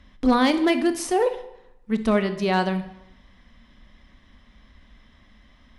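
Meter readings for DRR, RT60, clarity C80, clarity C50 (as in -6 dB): 9.5 dB, 0.85 s, 14.5 dB, 12.0 dB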